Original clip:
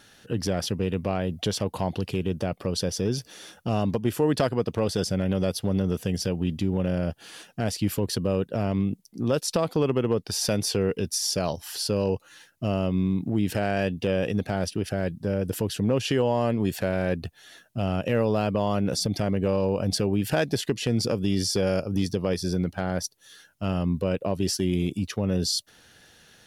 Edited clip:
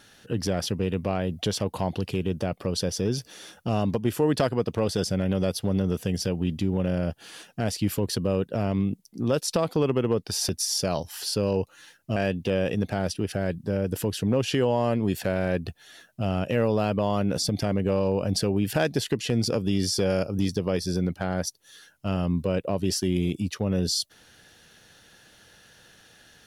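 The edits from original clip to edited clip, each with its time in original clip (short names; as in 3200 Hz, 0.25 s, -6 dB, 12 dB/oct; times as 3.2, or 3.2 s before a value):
10.49–11.02 cut
12.69–13.73 cut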